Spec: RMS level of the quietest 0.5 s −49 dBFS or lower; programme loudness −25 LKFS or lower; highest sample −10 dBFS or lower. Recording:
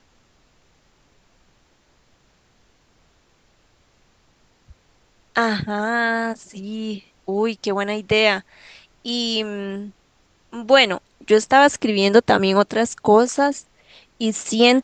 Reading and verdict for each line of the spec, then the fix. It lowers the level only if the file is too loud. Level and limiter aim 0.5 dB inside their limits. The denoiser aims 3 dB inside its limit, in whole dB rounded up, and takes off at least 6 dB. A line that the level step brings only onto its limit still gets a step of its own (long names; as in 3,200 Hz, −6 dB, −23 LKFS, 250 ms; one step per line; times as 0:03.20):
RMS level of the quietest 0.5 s −60 dBFS: in spec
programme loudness −19.0 LKFS: out of spec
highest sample −2.0 dBFS: out of spec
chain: level −6.5 dB
brickwall limiter −10.5 dBFS